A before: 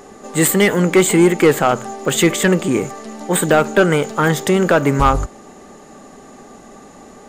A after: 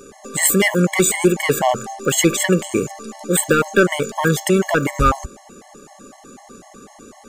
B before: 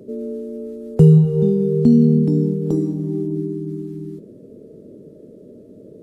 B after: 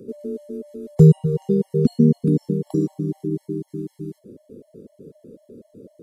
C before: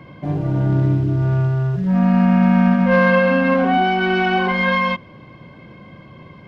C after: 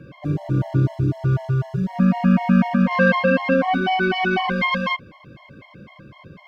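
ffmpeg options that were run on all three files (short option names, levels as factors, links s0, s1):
-af "highshelf=f=3500:g=6,afftfilt=real='re*gt(sin(2*PI*4*pts/sr)*(1-2*mod(floor(b*sr/1024/560),2)),0)':imag='im*gt(sin(2*PI*4*pts/sr)*(1-2*mod(floor(b*sr/1024/560),2)),0)':win_size=1024:overlap=0.75"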